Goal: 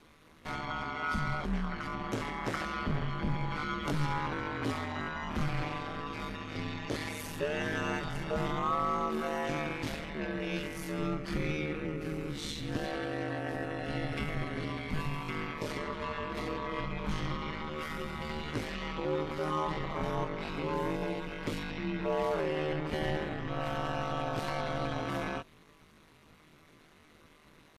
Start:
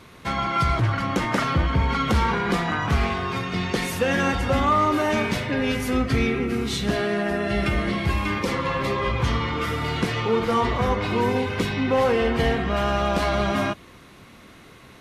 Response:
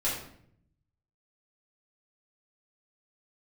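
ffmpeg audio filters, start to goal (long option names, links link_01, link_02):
-af "atempo=0.54,aeval=exprs='val(0)*sin(2*PI*77*n/s)':channel_layout=same,volume=-8.5dB"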